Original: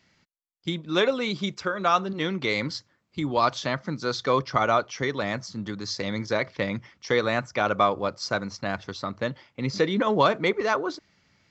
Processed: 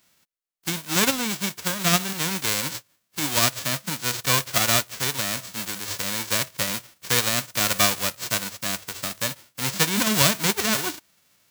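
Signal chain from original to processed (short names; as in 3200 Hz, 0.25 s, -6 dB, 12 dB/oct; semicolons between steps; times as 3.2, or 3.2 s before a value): spectral whitening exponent 0.1; notch 850 Hz, Q 12; gain +1.5 dB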